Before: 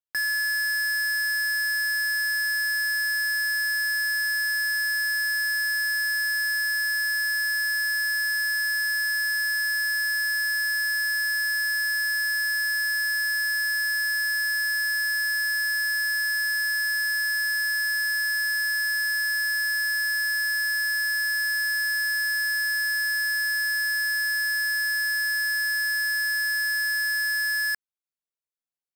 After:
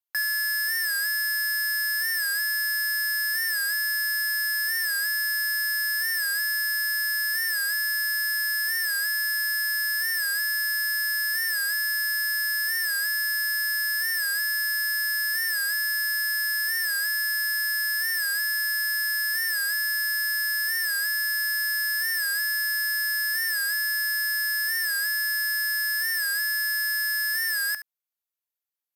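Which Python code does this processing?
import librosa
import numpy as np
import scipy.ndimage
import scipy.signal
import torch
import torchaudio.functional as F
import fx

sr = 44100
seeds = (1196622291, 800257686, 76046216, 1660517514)

p1 = scipy.signal.sosfilt(scipy.signal.bessel(2, 560.0, 'highpass', norm='mag', fs=sr, output='sos'), x)
p2 = fx.peak_eq(p1, sr, hz=13000.0, db=14.0, octaves=0.22)
p3 = p2 + fx.echo_single(p2, sr, ms=71, db=-12.0, dry=0)
y = fx.record_warp(p3, sr, rpm=45.0, depth_cents=100.0)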